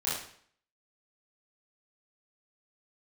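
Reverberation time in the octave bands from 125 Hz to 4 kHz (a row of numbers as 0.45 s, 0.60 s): 0.55 s, 0.60 s, 0.55 s, 0.55 s, 0.55 s, 0.55 s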